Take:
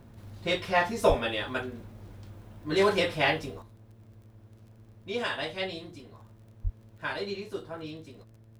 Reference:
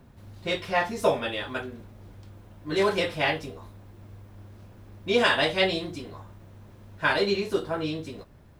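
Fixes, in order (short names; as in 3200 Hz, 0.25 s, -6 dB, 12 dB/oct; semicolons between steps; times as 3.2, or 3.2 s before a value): de-click; de-hum 111.2 Hz, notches 6; 1.08–1.2 HPF 140 Hz 24 dB/oct; 3.62 gain correction +10 dB; 6.63–6.75 HPF 140 Hz 24 dB/oct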